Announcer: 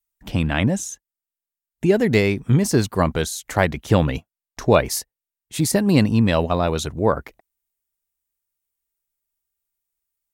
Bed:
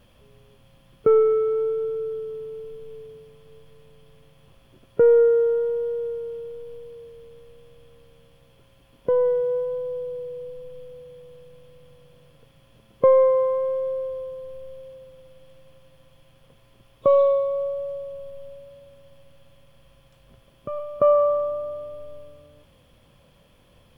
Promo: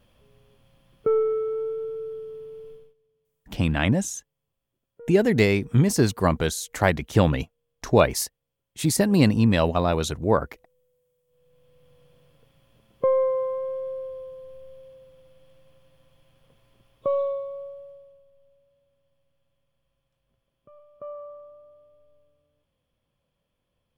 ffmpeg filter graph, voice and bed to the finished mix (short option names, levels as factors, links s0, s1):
-filter_complex "[0:a]adelay=3250,volume=0.794[s0];[1:a]volume=7.94,afade=t=out:st=2.71:d=0.23:silence=0.0668344,afade=t=in:st=11.26:d=0.76:silence=0.0707946,afade=t=out:st=16.75:d=1.5:silence=0.16788[s1];[s0][s1]amix=inputs=2:normalize=0"